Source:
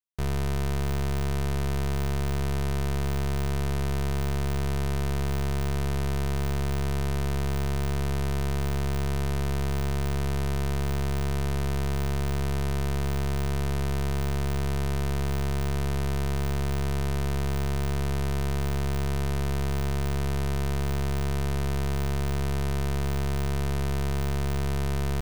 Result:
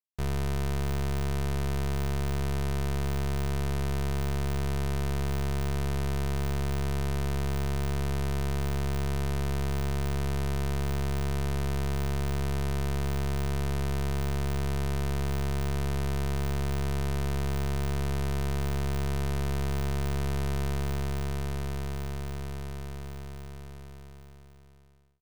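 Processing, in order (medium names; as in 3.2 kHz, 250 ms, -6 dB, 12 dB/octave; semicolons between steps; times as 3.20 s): fade out at the end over 4.59 s; upward expansion 1.5:1, over -43 dBFS; trim -2 dB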